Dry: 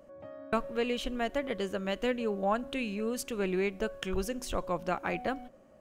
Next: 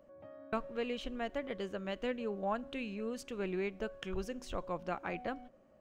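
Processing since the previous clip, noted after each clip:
parametric band 12,000 Hz −12.5 dB 1.1 octaves
level −6 dB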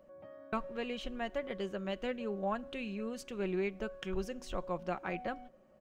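comb filter 5.4 ms, depth 34%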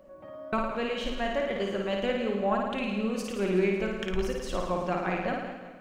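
flutter between parallel walls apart 9.4 metres, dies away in 0.94 s
feedback echo with a swinging delay time 184 ms, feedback 51%, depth 101 cents, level −13 dB
level +6 dB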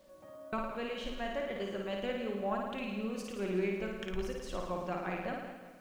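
bit reduction 10 bits
level −7.5 dB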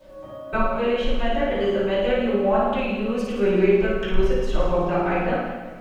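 convolution reverb RT60 0.50 s, pre-delay 3 ms, DRR −11 dB

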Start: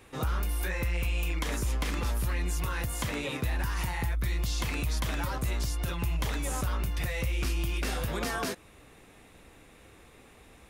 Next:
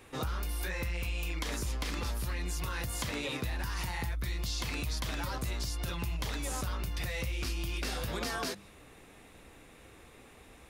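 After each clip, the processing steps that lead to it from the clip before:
mains-hum notches 50/100/150/200 Hz
dynamic equaliser 4,600 Hz, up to +6 dB, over −56 dBFS, Q 1.6
downward compressor 2.5 to 1, threshold −33 dBFS, peak gain reduction 5 dB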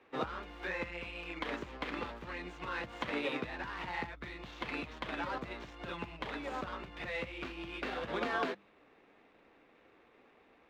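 running median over 9 samples
three-way crossover with the lows and the highs turned down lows −18 dB, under 210 Hz, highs −24 dB, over 4,700 Hz
expander for the loud parts 1.5 to 1, over −56 dBFS
level +4.5 dB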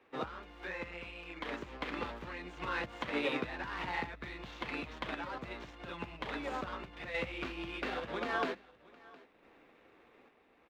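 sample-and-hold tremolo
single-tap delay 713 ms −22.5 dB
level +2.5 dB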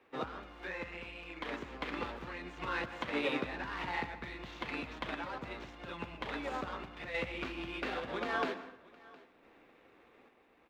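dense smooth reverb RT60 0.76 s, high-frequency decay 0.65×, pre-delay 105 ms, DRR 13 dB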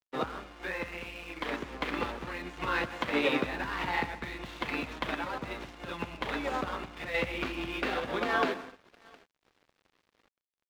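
dead-zone distortion −57.5 dBFS
level +6.5 dB

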